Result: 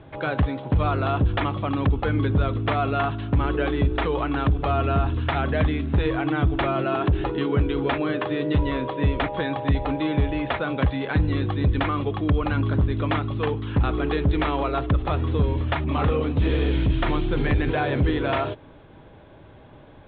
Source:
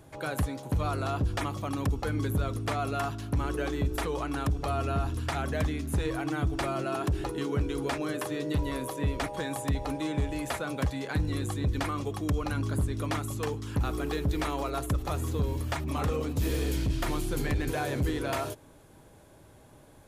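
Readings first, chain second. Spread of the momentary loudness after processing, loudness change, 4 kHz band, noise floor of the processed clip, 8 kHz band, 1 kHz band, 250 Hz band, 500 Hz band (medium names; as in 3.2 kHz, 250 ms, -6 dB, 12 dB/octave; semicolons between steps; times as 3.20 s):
3 LU, +7.5 dB, +5.5 dB, -47 dBFS, under -40 dB, +7.5 dB, +7.5 dB, +7.5 dB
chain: steep low-pass 3.7 kHz 72 dB/octave; trim +7.5 dB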